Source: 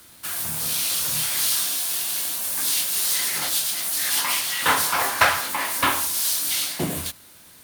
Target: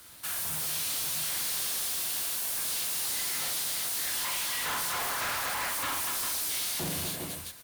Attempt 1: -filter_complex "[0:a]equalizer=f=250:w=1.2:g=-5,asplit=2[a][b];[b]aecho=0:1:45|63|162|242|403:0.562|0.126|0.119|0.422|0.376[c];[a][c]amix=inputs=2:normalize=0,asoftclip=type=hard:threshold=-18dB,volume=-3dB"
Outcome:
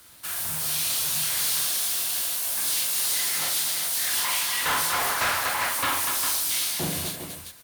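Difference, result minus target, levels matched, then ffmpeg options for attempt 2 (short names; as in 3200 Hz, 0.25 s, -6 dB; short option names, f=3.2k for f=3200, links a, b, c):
hard clip: distortion -7 dB
-filter_complex "[0:a]equalizer=f=250:w=1.2:g=-5,asplit=2[a][b];[b]aecho=0:1:45|63|162|242|403:0.562|0.126|0.119|0.422|0.376[c];[a][c]amix=inputs=2:normalize=0,asoftclip=type=hard:threshold=-27.5dB,volume=-3dB"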